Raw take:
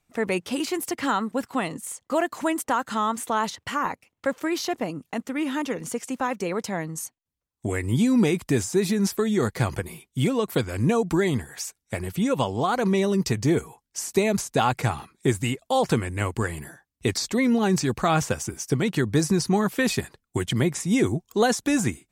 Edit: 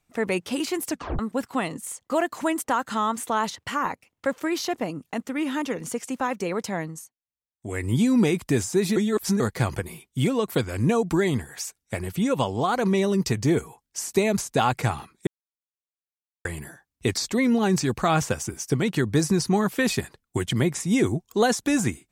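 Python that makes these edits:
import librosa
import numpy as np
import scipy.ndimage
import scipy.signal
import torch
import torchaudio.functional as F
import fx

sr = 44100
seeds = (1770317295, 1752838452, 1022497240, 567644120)

y = fx.edit(x, sr, fx.tape_stop(start_s=0.89, length_s=0.3),
    fx.fade_down_up(start_s=6.84, length_s=0.99, db=-17.0, fade_s=0.24),
    fx.reverse_span(start_s=8.96, length_s=0.44),
    fx.silence(start_s=15.27, length_s=1.18), tone=tone)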